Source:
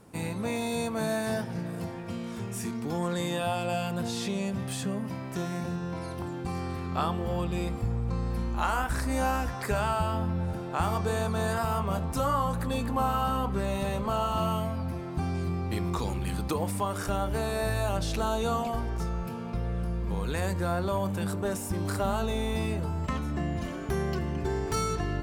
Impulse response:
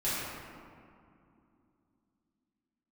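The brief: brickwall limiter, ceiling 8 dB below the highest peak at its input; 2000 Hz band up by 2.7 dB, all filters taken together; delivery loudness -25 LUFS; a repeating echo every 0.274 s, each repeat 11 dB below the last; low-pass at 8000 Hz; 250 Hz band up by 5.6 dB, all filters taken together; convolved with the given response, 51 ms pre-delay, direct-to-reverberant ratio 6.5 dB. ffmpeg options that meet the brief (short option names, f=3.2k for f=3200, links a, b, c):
-filter_complex "[0:a]lowpass=8k,equalizer=f=250:t=o:g=7.5,equalizer=f=2k:t=o:g=3.5,alimiter=limit=-21dB:level=0:latency=1,aecho=1:1:274|548|822:0.282|0.0789|0.0221,asplit=2[a][b];[1:a]atrim=start_sample=2205,adelay=51[c];[b][c]afir=irnorm=-1:irlink=0,volume=-15dB[d];[a][d]amix=inputs=2:normalize=0,volume=3.5dB"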